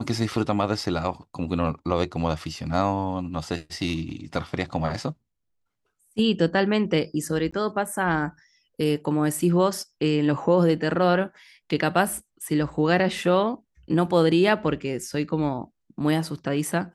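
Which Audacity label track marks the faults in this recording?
7.510000	7.530000	gap 15 ms

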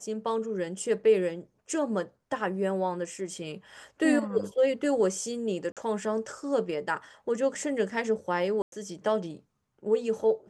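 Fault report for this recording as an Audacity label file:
5.720000	5.770000	gap 47 ms
8.620000	8.720000	gap 0.102 s

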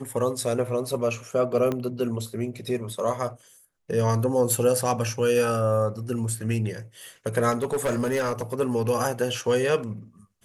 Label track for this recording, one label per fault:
1.720000	1.720000	pop -15 dBFS
7.510000	8.610000	clipped -20.5 dBFS

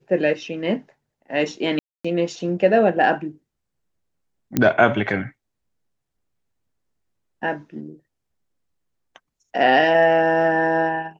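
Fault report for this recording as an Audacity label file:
1.790000	2.040000	gap 0.255 s
4.570000	4.570000	pop -6 dBFS

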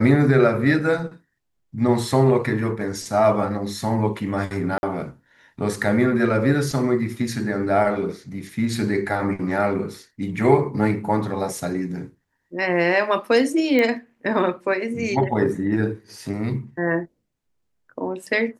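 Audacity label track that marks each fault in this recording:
4.780000	4.830000	gap 51 ms
13.790000	13.790000	pop -10 dBFS

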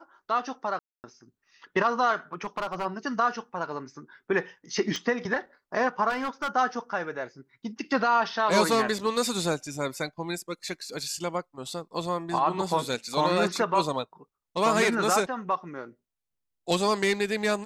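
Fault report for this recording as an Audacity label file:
0.790000	1.040000	gap 0.249 s
2.330000	2.860000	clipped -25 dBFS
4.960000	4.960000	pop -18 dBFS
6.090000	6.480000	clipped -25.5 dBFS

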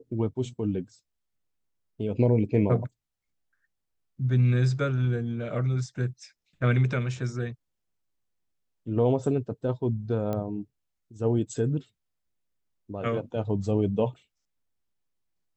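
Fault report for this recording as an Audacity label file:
10.330000	10.330000	pop -19 dBFS

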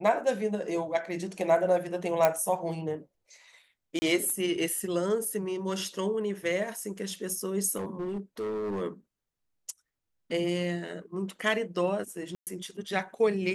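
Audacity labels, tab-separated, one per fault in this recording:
2.250000	2.250000	pop -9 dBFS
3.990000	4.020000	gap 30 ms
7.760000	8.820000	clipped -29.5 dBFS
12.350000	12.470000	gap 0.118 s

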